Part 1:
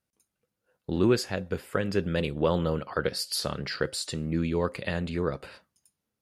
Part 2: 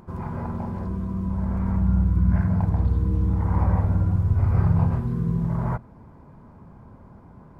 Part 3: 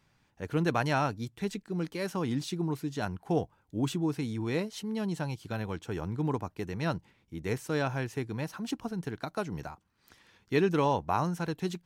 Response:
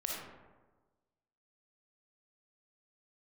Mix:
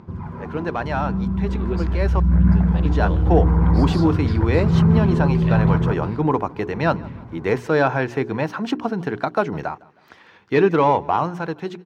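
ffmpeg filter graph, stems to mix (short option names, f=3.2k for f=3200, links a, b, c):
-filter_complex "[0:a]adelay=600,volume=-11.5dB[a];[1:a]equalizer=f=660:t=o:w=0.77:g=-6,aphaser=in_gain=1:out_gain=1:delay=3:decay=0.56:speed=0.86:type=sinusoidal,volume=-2dB,asplit=2[b][c];[c]volume=-6dB[d];[2:a]bandreject=f=60:t=h:w=6,bandreject=f=120:t=h:w=6,bandreject=f=180:t=h:w=6,bandreject=f=240:t=h:w=6,bandreject=f=300:t=h:w=6,bandreject=f=360:t=h:w=6,bandreject=f=420:t=h:w=6,asplit=2[e][f];[f]highpass=f=720:p=1,volume=13dB,asoftclip=type=tanh:threshold=-13.5dB[g];[e][g]amix=inputs=2:normalize=0,lowpass=f=1.1k:p=1,volume=-6dB,volume=2.5dB,asplit=3[h][i][j];[h]atrim=end=2.2,asetpts=PTS-STARTPTS,afade=t=out:st=2.196:d=0.004:c=hsin[k];[i]atrim=start=2.2:end=2.85,asetpts=PTS-STARTPTS,volume=0[l];[j]atrim=start=2.85,asetpts=PTS-STARTPTS,afade=t=in:d=0.004:c=hsin[m];[k][l][m]concat=n=3:v=0:a=1,asplit=2[n][o];[o]volume=-23.5dB[p];[a][b]amix=inputs=2:normalize=0,lowpass=7.4k,acompressor=threshold=-21dB:ratio=6,volume=0dB[q];[d][p]amix=inputs=2:normalize=0,aecho=0:1:157|314|471|628|785|942:1|0.41|0.168|0.0689|0.0283|0.0116[r];[n][q][r]amix=inputs=3:normalize=0,highpass=68,equalizer=f=10k:w=0.74:g=-8.5,dynaudnorm=f=250:g=17:m=10.5dB"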